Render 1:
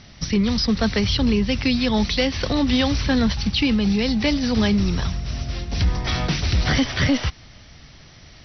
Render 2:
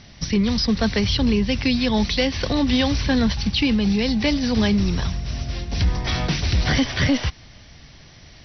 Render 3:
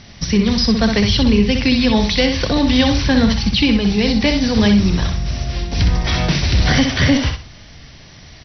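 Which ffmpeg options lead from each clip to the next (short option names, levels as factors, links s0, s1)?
-af "bandreject=f=1300:w=13"
-af "aecho=1:1:63|126|189:0.501|0.13|0.0339,volume=1.68"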